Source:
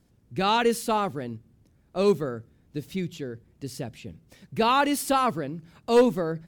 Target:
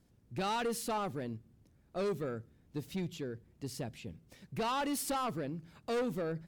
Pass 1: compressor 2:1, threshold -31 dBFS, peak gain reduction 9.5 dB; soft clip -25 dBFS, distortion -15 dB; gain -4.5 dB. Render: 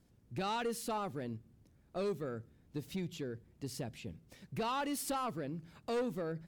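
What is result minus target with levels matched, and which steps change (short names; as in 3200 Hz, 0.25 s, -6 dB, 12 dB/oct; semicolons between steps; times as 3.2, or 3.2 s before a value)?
compressor: peak gain reduction +4 dB
change: compressor 2:1, threshold -22.5 dBFS, peak gain reduction 5.5 dB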